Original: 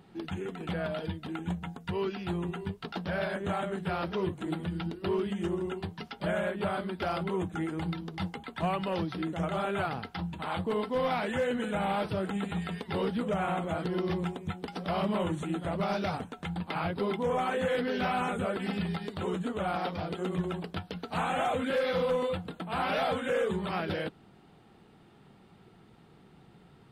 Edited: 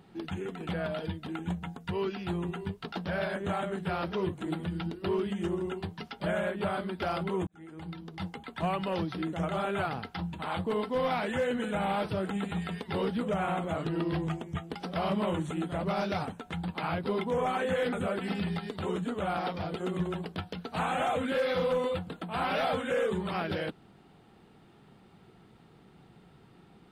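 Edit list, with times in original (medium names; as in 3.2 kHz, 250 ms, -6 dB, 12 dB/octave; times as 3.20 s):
7.47–8.96 s: fade in equal-power
13.76–14.64 s: speed 92%
17.85–18.31 s: delete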